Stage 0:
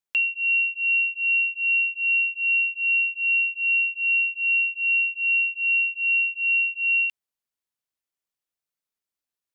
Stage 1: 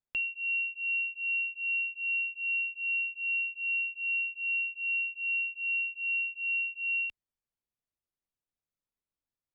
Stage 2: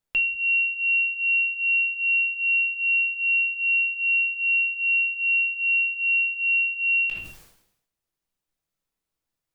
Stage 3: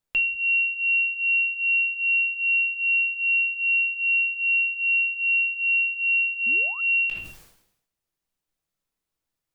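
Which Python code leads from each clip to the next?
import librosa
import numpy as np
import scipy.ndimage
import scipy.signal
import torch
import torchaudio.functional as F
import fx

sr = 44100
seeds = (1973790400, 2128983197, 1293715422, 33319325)

y1 = fx.tilt_eq(x, sr, slope=-3.0)
y1 = y1 * librosa.db_to_amplitude(-5.0)
y2 = fx.room_shoebox(y1, sr, seeds[0], volume_m3=160.0, walls='furnished', distance_m=0.64)
y2 = fx.sustainer(y2, sr, db_per_s=74.0)
y2 = y2 * librosa.db_to_amplitude(7.5)
y3 = fx.spec_paint(y2, sr, seeds[1], shape='rise', start_s=6.46, length_s=0.35, low_hz=210.0, high_hz=1400.0, level_db=-43.0)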